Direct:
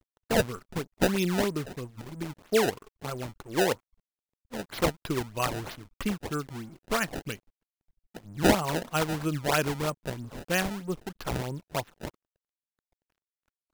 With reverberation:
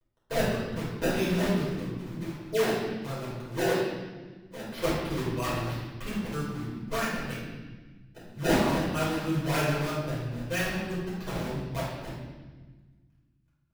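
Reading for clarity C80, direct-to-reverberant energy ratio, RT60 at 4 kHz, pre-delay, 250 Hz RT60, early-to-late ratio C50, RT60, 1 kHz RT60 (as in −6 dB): 2.5 dB, −9.0 dB, 1.3 s, 6 ms, 2.2 s, −0.5 dB, 1.4 s, 1.2 s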